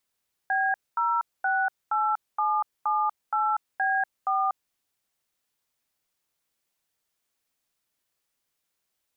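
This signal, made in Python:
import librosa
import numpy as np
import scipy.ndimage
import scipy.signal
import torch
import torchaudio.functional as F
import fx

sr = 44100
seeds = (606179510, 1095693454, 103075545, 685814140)

y = fx.dtmf(sr, digits='B068778B4', tone_ms=241, gap_ms=230, level_db=-24.5)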